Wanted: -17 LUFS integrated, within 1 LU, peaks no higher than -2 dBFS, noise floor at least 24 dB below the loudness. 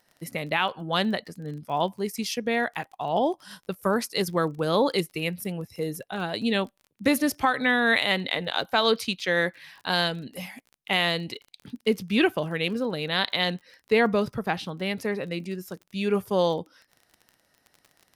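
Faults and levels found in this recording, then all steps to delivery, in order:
ticks 28/s; loudness -26.5 LUFS; peak -9.5 dBFS; loudness target -17.0 LUFS
-> de-click; gain +9.5 dB; limiter -2 dBFS

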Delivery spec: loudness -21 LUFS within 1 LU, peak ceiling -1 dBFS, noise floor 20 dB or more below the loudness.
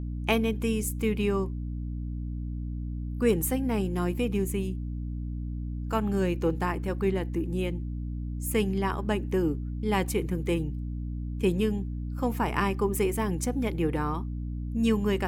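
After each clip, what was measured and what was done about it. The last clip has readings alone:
hum 60 Hz; harmonics up to 300 Hz; hum level -31 dBFS; loudness -29.5 LUFS; peak -10.0 dBFS; loudness target -21.0 LUFS
-> notches 60/120/180/240/300 Hz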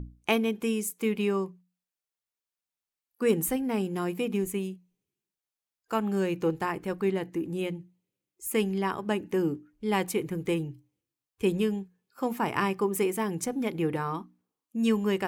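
hum none; loudness -29.5 LUFS; peak -10.0 dBFS; loudness target -21.0 LUFS
-> gain +8.5 dB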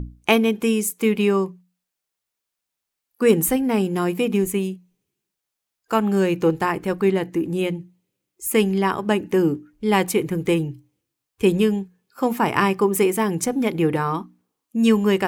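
loudness -21.0 LUFS; peak -1.5 dBFS; noise floor -83 dBFS

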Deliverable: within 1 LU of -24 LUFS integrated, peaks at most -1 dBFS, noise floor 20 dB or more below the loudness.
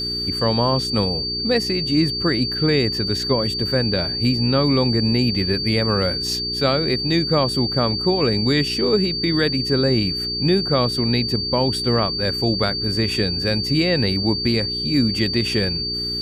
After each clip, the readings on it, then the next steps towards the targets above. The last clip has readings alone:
hum 60 Hz; harmonics up to 420 Hz; hum level -30 dBFS; steady tone 4600 Hz; tone level -23 dBFS; loudness -19.0 LUFS; peak -5.5 dBFS; loudness target -24.0 LUFS
-> de-hum 60 Hz, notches 7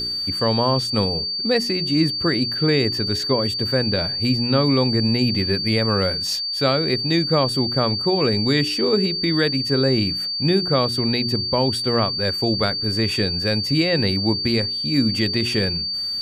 hum none; steady tone 4600 Hz; tone level -23 dBFS
-> notch 4600 Hz, Q 30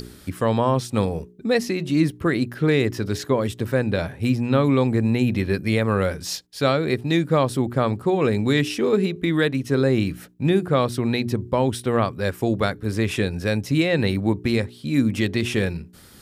steady tone none; loudness -22.0 LUFS; peak -7.0 dBFS; loudness target -24.0 LUFS
-> gain -2 dB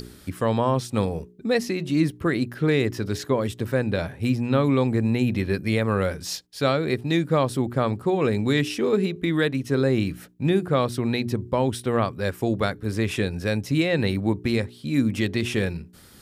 loudness -24.0 LUFS; peak -9.0 dBFS; noise floor -49 dBFS

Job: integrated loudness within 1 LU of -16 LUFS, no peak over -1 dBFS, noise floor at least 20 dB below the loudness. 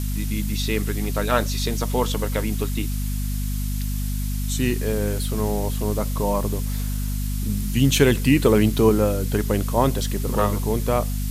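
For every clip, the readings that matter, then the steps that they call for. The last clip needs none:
hum 50 Hz; harmonics up to 250 Hz; hum level -23 dBFS; noise floor -25 dBFS; noise floor target -43 dBFS; loudness -23.0 LUFS; peak -3.5 dBFS; loudness target -16.0 LUFS
-> de-hum 50 Hz, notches 5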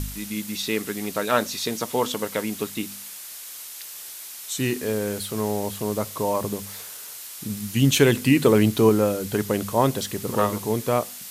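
hum none; noise floor -39 dBFS; noise floor target -44 dBFS
-> denoiser 6 dB, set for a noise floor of -39 dBFS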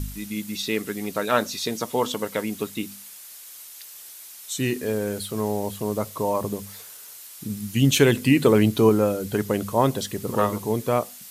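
noise floor -43 dBFS; noise floor target -44 dBFS
-> denoiser 6 dB, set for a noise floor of -43 dBFS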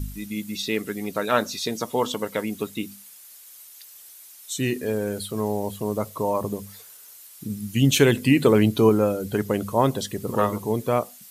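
noise floor -47 dBFS; loudness -24.0 LUFS; peak -4.5 dBFS; loudness target -16.0 LUFS
-> gain +8 dB; limiter -1 dBFS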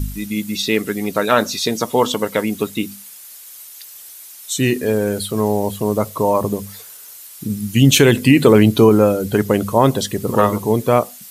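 loudness -16.5 LUFS; peak -1.0 dBFS; noise floor -39 dBFS

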